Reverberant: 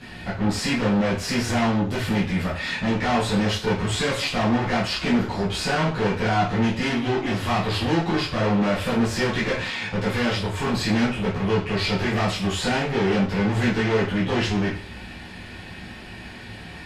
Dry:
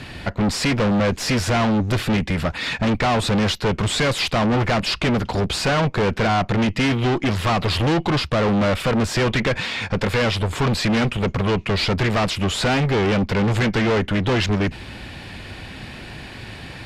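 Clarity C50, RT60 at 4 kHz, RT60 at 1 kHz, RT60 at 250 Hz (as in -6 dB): 6.0 dB, 0.40 s, 0.45 s, 0.50 s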